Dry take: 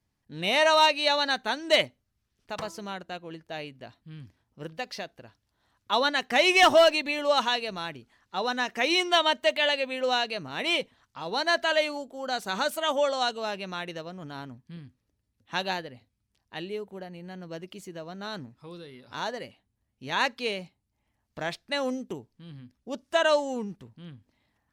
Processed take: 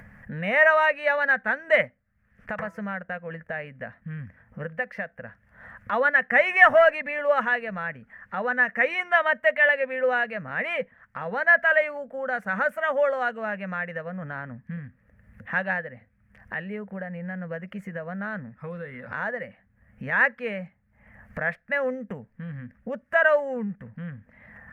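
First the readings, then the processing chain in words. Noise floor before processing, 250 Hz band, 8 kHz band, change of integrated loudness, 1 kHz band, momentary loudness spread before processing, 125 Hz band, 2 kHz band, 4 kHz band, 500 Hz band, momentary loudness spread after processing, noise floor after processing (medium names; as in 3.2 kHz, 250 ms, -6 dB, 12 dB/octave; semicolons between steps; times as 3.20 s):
-79 dBFS, 0.0 dB, under -20 dB, +2.0 dB, 0.0 dB, 20 LU, +6.5 dB, +7.5 dB, -15.5 dB, +2.0 dB, 19 LU, -65 dBFS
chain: FFT filter 130 Hz 0 dB, 210 Hz +6 dB, 350 Hz -18 dB, 500 Hz +5 dB, 940 Hz -4 dB, 1.8 kHz +12 dB, 3.9 kHz -27 dB, 12 kHz -17 dB; upward compressor, threshold -27 dBFS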